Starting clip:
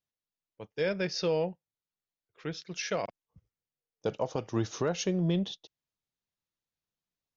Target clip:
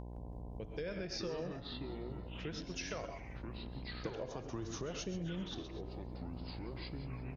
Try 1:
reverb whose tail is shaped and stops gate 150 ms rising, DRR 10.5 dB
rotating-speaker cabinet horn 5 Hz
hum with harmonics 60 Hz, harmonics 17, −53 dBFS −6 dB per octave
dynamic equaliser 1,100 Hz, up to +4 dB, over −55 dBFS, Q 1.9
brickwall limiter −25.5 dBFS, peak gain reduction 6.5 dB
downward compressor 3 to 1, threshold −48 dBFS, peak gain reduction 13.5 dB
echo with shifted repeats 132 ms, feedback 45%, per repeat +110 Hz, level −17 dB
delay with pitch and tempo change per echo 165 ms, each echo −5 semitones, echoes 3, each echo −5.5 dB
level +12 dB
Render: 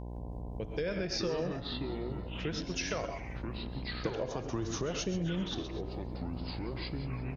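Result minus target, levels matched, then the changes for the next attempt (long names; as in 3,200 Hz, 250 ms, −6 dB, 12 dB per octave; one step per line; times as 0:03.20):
downward compressor: peak gain reduction −7 dB
change: downward compressor 3 to 1, threshold −58.5 dBFS, peak gain reduction 20.5 dB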